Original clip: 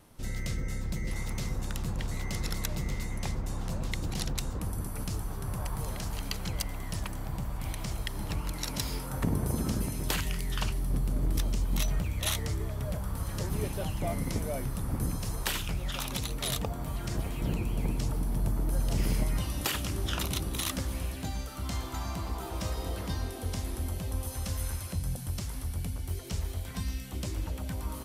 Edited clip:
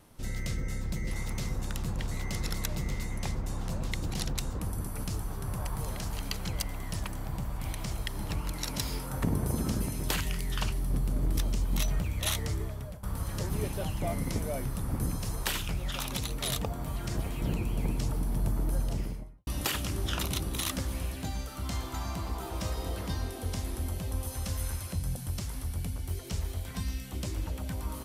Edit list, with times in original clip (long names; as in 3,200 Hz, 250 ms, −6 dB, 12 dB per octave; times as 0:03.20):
0:12.59–0:13.03: fade out, to −16.5 dB
0:18.63–0:19.47: fade out and dull